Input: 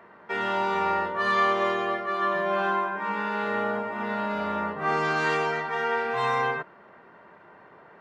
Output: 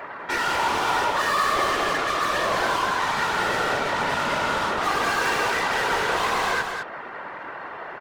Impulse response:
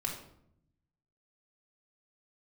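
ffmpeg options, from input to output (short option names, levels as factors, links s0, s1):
-filter_complex "[0:a]asplit=2[s0][s1];[s1]highpass=f=720:p=1,volume=31.6,asoftclip=type=tanh:threshold=0.237[s2];[s0][s2]amix=inputs=2:normalize=0,lowpass=f=7000:p=1,volume=0.501,afftfilt=real='hypot(re,im)*cos(2*PI*random(0))':imag='hypot(re,im)*sin(2*PI*random(1))':win_size=512:overlap=0.75,aecho=1:1:206:0.501"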